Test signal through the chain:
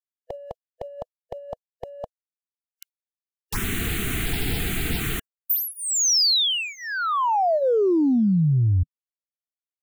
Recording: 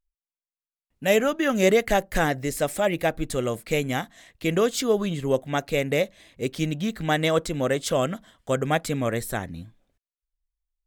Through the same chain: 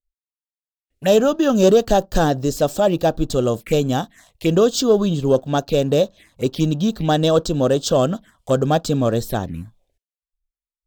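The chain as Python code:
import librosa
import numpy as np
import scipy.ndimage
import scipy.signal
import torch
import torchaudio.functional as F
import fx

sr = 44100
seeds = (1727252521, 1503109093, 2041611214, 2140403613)

y = fx.leveller(x, sr, passes=1)
y = fx.noise_reduce_blind(y, sr, reduce_db=25)
y = fx.env_phaser(y, sr, low_hz=170.0, high_hz=2100.0, full_db=-21.5)
y = F.gain(torch.from_numpy(y), 4.5).numpy()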